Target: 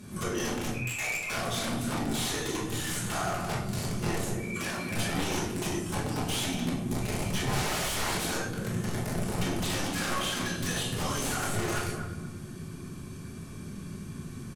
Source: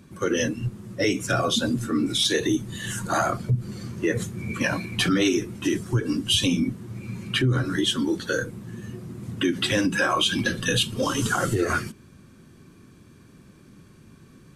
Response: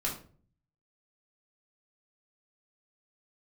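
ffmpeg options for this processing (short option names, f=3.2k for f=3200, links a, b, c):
-filter_complex "[0:a]aemphasis=mode=production:type=cd,volume=21dB,asoftclip=hard,volume=-21dB,acompressor=threshold=-36dB:ratio=10,asplit=2[a][b];[b]adelay=240,lowpass=f=1.2k:p=1,volume=-5dB,asplit=2[c][d];[d]adelay=240,lowpass=f=1.2k:p=1,volume=0.33,asplit=2[e][f];[f]adelay=240,lowpass=f=1.2k:p=1,volume=0.33,asplit=2[g][h];[h]adelay=240,lowpass=f=1.2k:p=1,volume=0.33[i];[a][c][e][g][i]amix=inputs=5:normalize=0,asettb=1/sr,asplit=3[j][k][l];[j]atrim=end=0.744[m];[k]atrim=start=0.74:end=1.3,asetpts=PTS-STARTPTS,afade=t=in:d=0.004:c=qsin,afade=t=out:st=0.556:d=0.004:c=qsin,lowpass=f=2.3k:t=q:w=0.5098,lowpass=f=2.3k:t=q:w=0.6013,lowpass=f=2.3k:t=q:w=0.9,lowpass=f=2.3k:t=q:w=2.563,afreqshift=-2700[n];[l]atrim=start=1.296[o];[m][n]acrossfade=d=0.004:c1=hsin:c2=qsin[p];[p][o]acrossfade=d=0.004:c1=qsin:c2=hsin,asettb=1/sr,asplit=3[q][r][s];[q]atrim=end=4.304[t];[r]atrim=start=4.3:end=4.88,asetpts=PTS-STARTPTS,afade=t=in:d=0.004:c=qsin,afade=t=out:st=0.576:d=0.004:c=qsin,highpass=230[u];[s]atrim=start=4.876[v];[t][u]acrossfade=d=0.004:c1=hsin:c2=qsin[w];[w][v]acrossfade=d=0.004:c1=qsin:c2=hsin,asettb=1/sr,asplit=3[x][y][z];[x]atrim=end=7.484[aa];[y]atrim=start=7.48:end=8.27,asetpts=PTS-STARTPTS,afade=t=in:d=0.004:c=qsin,afade=t=out:st=0.786:d=0.004:c=qsin,acontrast=83[ab];[z]atrim=start=8.266[ac];[aa][ab]acrossfade=d=0.004:c1=hsin:c2=qsin[ad];[ad][ac]acrossfade=d=0.004:c1=qsin:c2=hsin,aeval=exprs='(mod(35.5*val(0)+1,2)-1)/35.5':c=same[ae];[1:a]atrim=start_sample=2205,asetrate=25137,aresample=44100[af];[ae][af]afir=irnorm=-1:irlink=0,volume=-2.5dB"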